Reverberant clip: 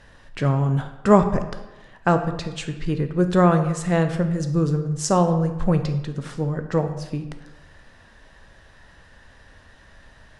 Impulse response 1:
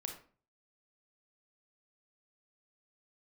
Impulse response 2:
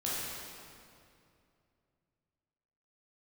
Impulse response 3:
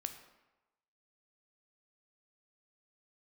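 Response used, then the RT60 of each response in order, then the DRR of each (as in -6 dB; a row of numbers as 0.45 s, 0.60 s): 3; 0.40 s, 2.5 s, 1.1 s; 3.0 dB, -8.0 dB, 7.0 dB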